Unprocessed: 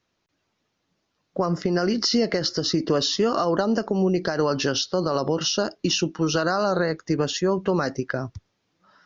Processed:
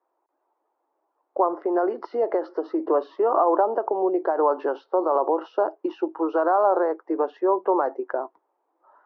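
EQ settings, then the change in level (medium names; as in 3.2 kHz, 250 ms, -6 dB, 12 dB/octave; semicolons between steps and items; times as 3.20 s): elliptic high-pass 330 Hz, stop band 60 dB; resonant low-pass 900 Hz, resonance Q 3.5; distance through air 160 m; 0.0 dB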